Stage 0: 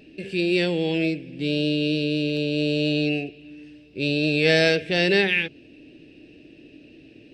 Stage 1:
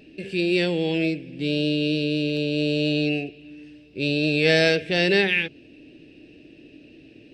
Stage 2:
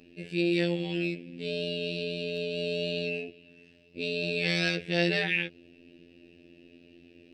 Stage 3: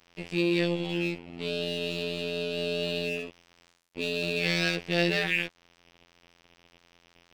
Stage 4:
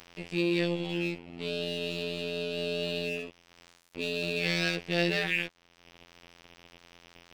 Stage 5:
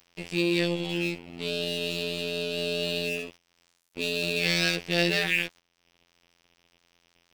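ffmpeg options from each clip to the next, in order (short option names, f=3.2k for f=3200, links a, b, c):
-af anull
-af "afftfilt=real='hypot(re,im)*cos(PI*b)':imag='0':win_size=2048:overlap=0.75,volume=-3dB"
-filter_complex "[0:a]asplit=2[a][b];[b]acompressor=threshold=-36dB:ratio=6,volume=-2dB[c];[a][c]amix=inputs=2:normalize=0,aeval=exprs='sgn(val(0))*max(abs(val(0))-0.0075,0)':c=same"
-af "acompressor=mode=upward:threshold=-39dB:ratio=2.5,volume=-2dB"
-af "agate=range=-15dB:threshold=-49dB:ratio=16:detection=peak,highshelf=f=5k:g=10,volume=2dB"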